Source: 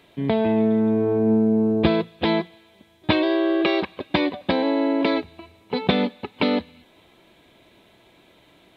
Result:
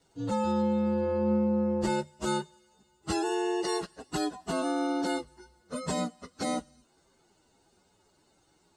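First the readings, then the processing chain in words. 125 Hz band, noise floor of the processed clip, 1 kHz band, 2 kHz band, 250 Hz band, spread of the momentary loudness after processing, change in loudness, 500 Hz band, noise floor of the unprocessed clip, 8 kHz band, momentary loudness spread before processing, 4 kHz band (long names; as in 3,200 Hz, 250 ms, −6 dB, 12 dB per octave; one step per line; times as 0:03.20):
−8.0 dB, −68 dBFS, −4.5 dB, −11.0 dB, −9.0 dB, 9 LU, −8.5 dB, −9.0 dB, −56 dBFS, can't be measured, 8 LU, −10.5 dB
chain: partials spread apart or drawn together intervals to 129%
level −7.5 dB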